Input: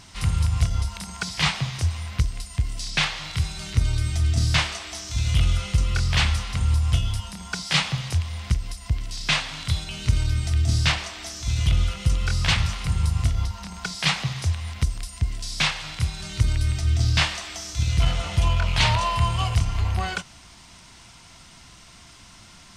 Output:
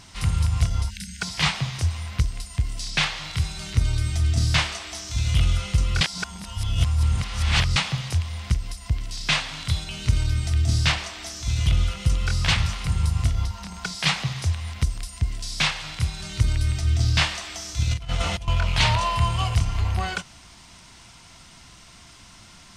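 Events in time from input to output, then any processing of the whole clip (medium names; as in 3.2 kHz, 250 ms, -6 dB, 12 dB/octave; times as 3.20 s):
0.90–1.21 s: spectral selection erased 260–1400 Hz
6.01–7.76 s: reverse
17.91–18.48 s: compressor with a negative ratio -25 dBFS, ratio -0.5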